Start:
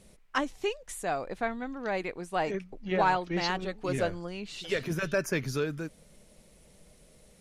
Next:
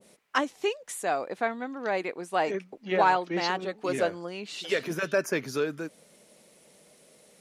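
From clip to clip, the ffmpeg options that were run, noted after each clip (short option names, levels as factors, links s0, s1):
-af "highpass=260,adynamicequalizer=threshold=0.00708:dfrequency=1500:dqfactor=0.7:tfrequency=1500:tqfactor=0.7:attack=5:release=100:ratio=0.375:range=2:mode=cutabove:tftype=highshelf,volume=1.5"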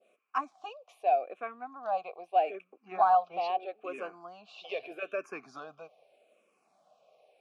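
-filter_complex "[0:a]asplit=3[s0][s1][s2];[s0]bandpass=f=730:t=q:w=8,volume=1[s3];[s1]bandpass=f=1090:t=q:w=8,volume=0.501[s4];[s2]bandpass=f=2440:t=q:w=8,volume=0.355[s5];[s3][s4][s5]amix=inputs=3:normalize=0,asplit=2[s6][s7];[s7]afreqshift=-0.8[s8];[s6][s8]amix=inputs=2:normalize=1,volume=2.37"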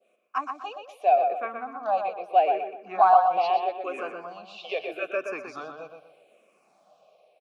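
-filter_complex "[0:a]acrossover=split=290[s0][s1];[s0]alimiter=level_in=25.1:limit=0.0631:level=0:latency=1:release=213,volume=0.0398[s2];[s2][s1]amix=inputs=2:normalize=0,dynaudnorm=f=100:g=9:m=2,asplit=2[s3][s4];[s4]adelay=123,lowpass=f=3900:p=1,volume=0.531,asplit=2[s5][s6];[s6]adelay=123,lowpass=f=3900:p=1,volume=0.35,asplit=2[s7][s8];[s8]adelay=123,lowpass=f=3900:p=1,volume=0.35,asplit=2[s9][s10];[s10]adelay=123,lowpass=f=3900:p=1,volume=0.35[s11];[s3][s5][s7][s9][s11]amix=inputs=5:normalize=0"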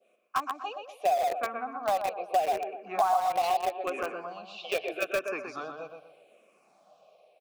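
-filter_complex "[0:a]asplit=2[s0][s1];[s1]acrusher=bits=3:mix=0:aa=0.000001,volume=0.376[s2];[s0][s2]amix=inputs=2:normalize=0,acompressor=threshold=0.0631:ratio=4"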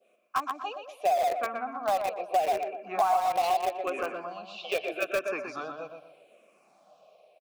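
-filter_complex "[0:a]asplit=2[s0][s1];[s1]asoftclip=type=hard:threshold=0.0668,volume=0.335[s2];[s0][s2]amix=inputs=2:normalize=0,asplit=2[s3][s4];[s4]adelay=120,highpass=300,lowpass=3400,asoftclip=type=hard:threshold=0.0668,volume=0.224[s5];[s3][s5]amix=inputs=2:normalize=0,volume=0.841"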